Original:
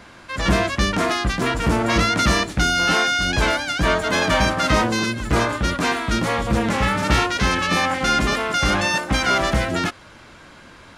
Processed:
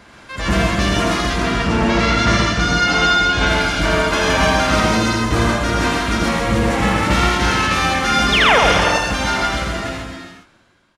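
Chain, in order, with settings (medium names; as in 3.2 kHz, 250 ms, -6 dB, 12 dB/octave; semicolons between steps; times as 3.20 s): fade out at the end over 2.44 s; 1.30–3.47 s: low-pass 6 kHz 12 dB/octave; 8.32–8.59 s: painted sound fall 420–3900 Hz -14 dBFS; loudspeakers at several distances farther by 28 m -3 dB, 46 m -3 dB; gated-style reverb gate 440 ms flat, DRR 3 dB; trim -1.5 dB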